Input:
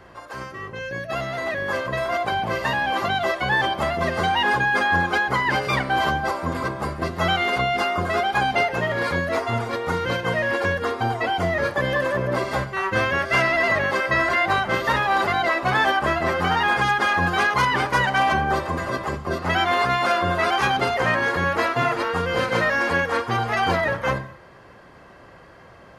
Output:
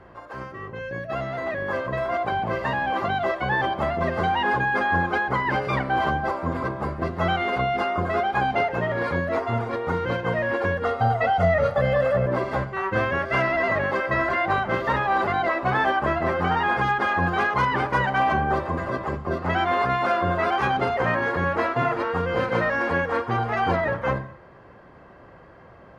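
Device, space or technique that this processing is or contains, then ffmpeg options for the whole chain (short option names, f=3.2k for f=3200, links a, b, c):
through cloth: -filter_complex "[0:a]highshelf=f=3.3k:g=-17.5,asettb=1/sr,asplit=3[a][b][c];[a]atrim=end=10.844[d];[b]atrim=start=10.84:end=12.26,asetpts=PTS-STARTPTS,afade=t=in:d=0.004:c=qsin,afade=t=out:st=1.416:d=0.004:c=qsin,aecho=1:1:1.5:0.88,atrim=end_sample=62622[e];[c]atrim=start=12.256[f];[d][e]acrossfade=d=0.004:c1=hsin:c2=qsin[g];[g][f]acrossfade=d=0.004:c1=qsin:c2=hsin"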